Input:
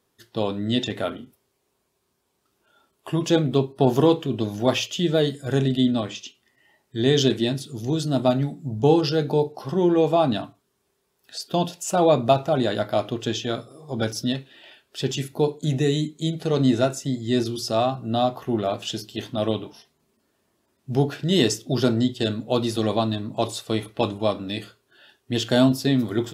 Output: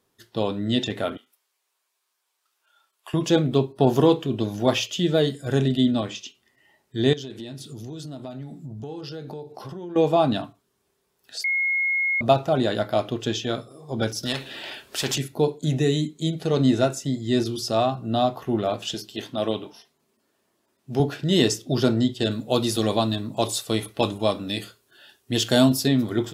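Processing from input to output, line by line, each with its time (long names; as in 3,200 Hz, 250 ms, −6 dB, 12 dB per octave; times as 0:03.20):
0:01.17–0:03.14: high-pass filter 1,100 Hz
0:07.13–0:09.96: downward compressor, threshold −33 dBFS
0:11.44–0:12.21: beep over 2,160 Hz −20 dBFS
0:14.23–0:15.18: every bin compressed towards the loudest bin 2 to 1
0:18.94–0:21.00: high-pass filter 220 Hz 6 dB per octave
0:22.31–0:25.88: high-shelf EQ 5,300 Hz +10 dB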